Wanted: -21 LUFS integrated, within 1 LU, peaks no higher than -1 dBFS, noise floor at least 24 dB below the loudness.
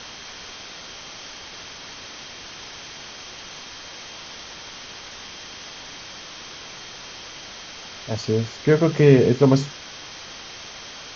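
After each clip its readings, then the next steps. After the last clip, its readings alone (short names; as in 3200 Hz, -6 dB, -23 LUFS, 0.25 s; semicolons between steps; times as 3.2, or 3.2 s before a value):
steady tone 3200 Hz; tone level -47 dBFS; noise floor -39 dBFS; noise floor target -43 dBFS; loudness -19.0 LUFS; peak -2.0 dBFS; loudness target -21.0 LUFS
-> notch 3200 Hz, Q 30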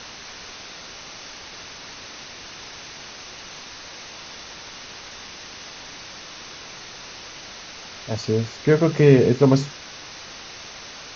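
steady tone none; noise floor -40 dBFS; noise floor target -43 dBFS
-> denoiser 6 dB, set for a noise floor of -40 dBFS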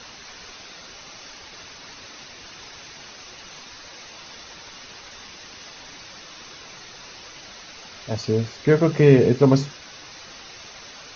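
noise floor -43 dBFS; loudness -19.0 LUFS; peak -2.0 dBFS; loudness target -21.0 LUFS
-> gain -2 dB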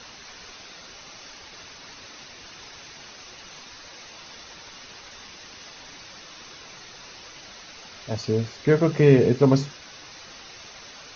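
loudness -21.0 LUFS; peak -4.0 dBFS; noise floor -45 dBFS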